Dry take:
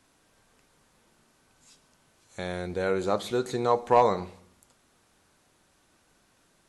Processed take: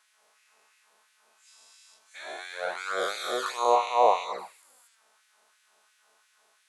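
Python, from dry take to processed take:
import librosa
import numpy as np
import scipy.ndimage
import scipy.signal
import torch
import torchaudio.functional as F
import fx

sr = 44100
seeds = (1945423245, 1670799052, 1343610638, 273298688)

y = fx.spec_dilate(x, sr, span_ms=480)
y = fx.env_flanger(y, sr, rest_ms=4.8, full_db=-13.5)
y = fx.filter_lfo_highpass(y, sr, shape='sine', hz=2.9, low_hz=600.0, high_hz=2000.0, q=1.4)
y = y * 10.0 ** (-3.0 / 20.0)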